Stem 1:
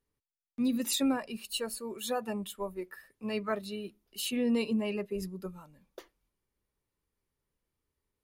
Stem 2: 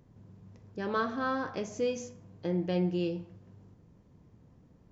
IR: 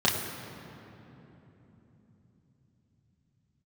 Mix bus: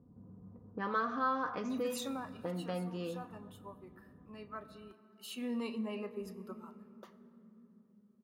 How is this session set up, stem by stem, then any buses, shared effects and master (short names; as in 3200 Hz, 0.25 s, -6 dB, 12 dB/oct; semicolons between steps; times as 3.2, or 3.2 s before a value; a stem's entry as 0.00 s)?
1.98 s -13 dB -> 2.49 s -20.5 dB -> 4.73 s -20.5 dB -> 5.42 s -12 dB, 1.05 s, send -20.5 dB, dry
+1.0 dB, 0.00 s, no send, low-pass opened by the level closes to 320 Hz, open at -28.5 dBFS; comb 4.1 ms, depth 53%; compressor 2.5:1, threshold -43 dBFS, peak gain reduction 13.5 dB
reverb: on, RT60 3.5 s, pre-delay 3 ms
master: HPF 74 Hz; bell 1200 Hz +13.5 dB 0.94 oct